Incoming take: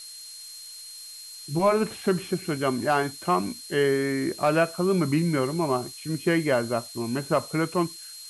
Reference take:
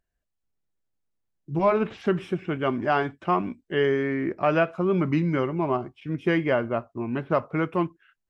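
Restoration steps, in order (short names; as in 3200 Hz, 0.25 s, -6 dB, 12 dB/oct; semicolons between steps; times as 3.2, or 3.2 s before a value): clip repair -12.5 dBFS; notch 4200 Hz, Q 30; denoiser 30 dB, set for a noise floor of -42 dBFS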